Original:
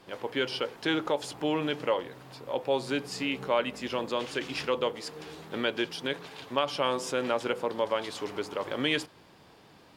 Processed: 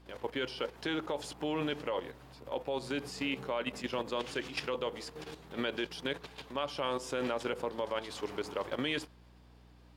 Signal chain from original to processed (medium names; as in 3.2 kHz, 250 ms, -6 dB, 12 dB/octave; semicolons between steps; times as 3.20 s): level held to a coarse grid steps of 11 dB; mains buzz 60 Hz, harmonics 5, -59 dBFS -6 dB/octave